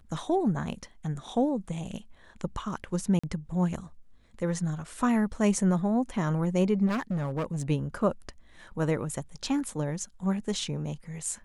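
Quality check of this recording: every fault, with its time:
0:03.19–0:03.23: drop-out 45 ms
0:06.86–0:07.63: clipping −26 dBFS

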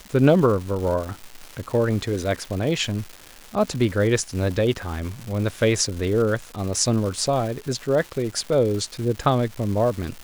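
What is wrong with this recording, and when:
surface crackle 440 per second −30 dBFS

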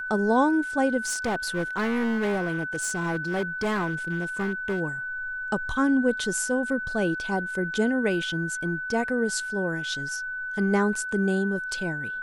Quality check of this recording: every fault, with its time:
whistle 1,500 Hz −30 dBFS
0:01.06–0:04.81: clipping −22.5 dBFS

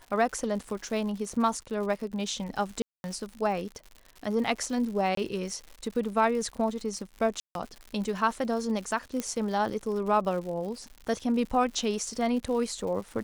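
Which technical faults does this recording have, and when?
surface crackle 140 per second −37 dBFS
0:02.82–0:03.04: drop-out 221 ms
0:05.15–0:05.17: drop-out 23 ms
0:07.40–0:07.55: drop-out 152 ms
0:09.20: click −16 dBFS

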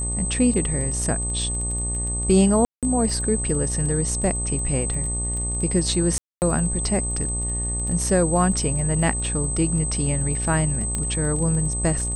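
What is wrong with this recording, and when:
mains buzz 60 Hz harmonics 20 −28 dBFS
surface crackle 19 per second −29 dBFS
whistle 8,200 Hz −26 dBFS
0:02.65–0:02.83: drop-out 177 ms
0:06.18–0:06.42: drop-out 239 ms
0:10.95: click −12 dBFS

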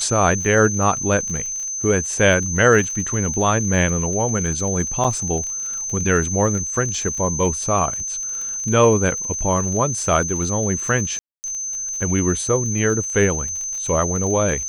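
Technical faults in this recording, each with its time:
surface crackle 44 per second −27 dBFS
whistle 6,200 Hz −24 dBFS
0:05.04–0:05.05: drop-out 5.6 ms
0:11.19–0:11.44: drop-out 249 ms

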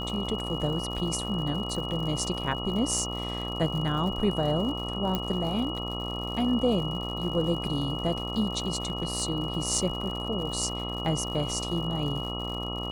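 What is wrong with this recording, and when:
mains buzz 60 Hz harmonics 22 −35 dBFS
surface crackle 120 per second −36 dBFS
whistle 2,900 Hz −35 dBFS
0:05.15: click −14 dBFS
0:08.75–0:09.23: clipping −22.5 dBFS

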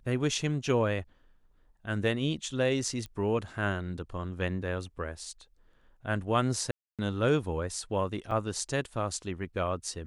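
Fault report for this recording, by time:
0:03.06: click −26 dBFS
0:06.71–0:06.99: drop-out 277 ms
0:08.31–0:08.32: drop-out 5.2 ms

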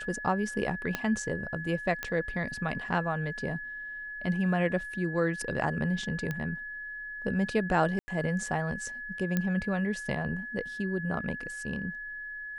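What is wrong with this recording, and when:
whistle 1,700 Hz −37 dBFS
0:00.95: click −14 dBFS
0:02.03: click −17 dBFS
0:06.31: click −20 dBFS
0:07.99–0:08.08: drop-out 90 ms
0:09.37: click −15 dBFS

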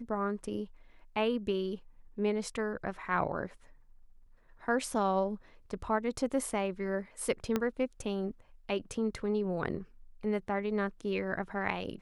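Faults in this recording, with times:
0:07.56: click −16 dBFS

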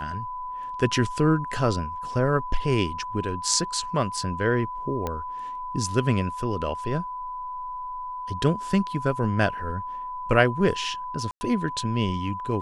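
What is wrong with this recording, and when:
whistle 1,000 Hz −31 dBFS
0:05.07: click −15 dBFS
0:11.31–0:11.41: drop-out 100 ms

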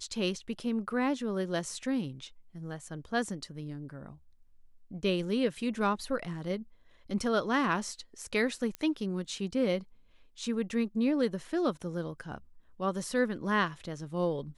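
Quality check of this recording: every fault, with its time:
0:08.75: click −21 dBFS

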